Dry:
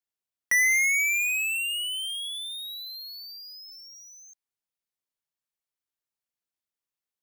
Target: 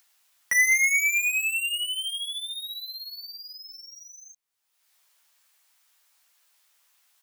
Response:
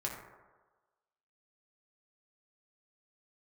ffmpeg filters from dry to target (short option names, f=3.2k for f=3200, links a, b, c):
-filter_complex "[0:a]asplit=2[a][b];[b]adelay=13,volume=-5dB[c];[a][c]amix=inputs=2:normalize=0,acrossover=split=670[d][e];[e]acompressor=mode=upward:threshold=-45dB:ratio=2.5[f];[d][f]amix=inputs=2:normalize=0"